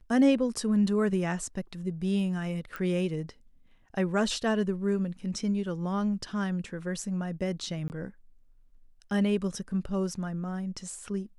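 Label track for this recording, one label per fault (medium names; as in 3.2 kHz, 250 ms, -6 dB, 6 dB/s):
2.760000	2.760000	pop -23 dBFS
7.880000	7.900000	dropout 19 ms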